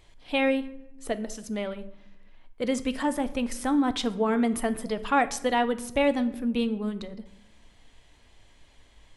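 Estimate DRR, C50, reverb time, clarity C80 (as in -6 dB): 11.0 dB, 15.5 dB, 0.80 s, 18.0 dB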